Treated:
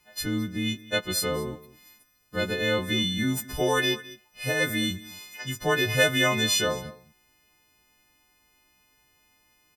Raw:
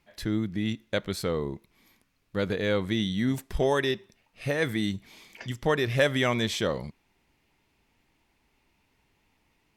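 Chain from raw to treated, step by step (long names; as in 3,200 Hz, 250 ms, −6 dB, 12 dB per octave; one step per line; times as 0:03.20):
every partial snapped to a pitch grid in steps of 3 semitones
single-tap delay 212 ms −19 dB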